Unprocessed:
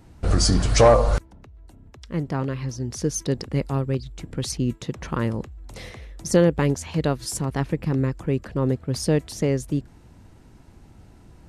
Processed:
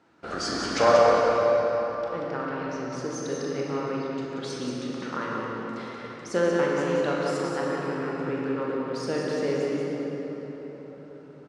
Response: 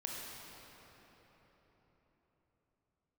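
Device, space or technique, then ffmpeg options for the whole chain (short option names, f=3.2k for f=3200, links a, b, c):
station announcement: -filter_complex "[0:a]highpass=320,lowpass=4.7k,equalizer=f=1.4k:t=o:w=0.38:g=8.5,aecho=1:1:40.82|183.7:0.316|0.501[a];[1:a]atrim=start_sample=2205[b];[a][b]afir=irnorm=-1:irlink=0,volume=-2.5dB"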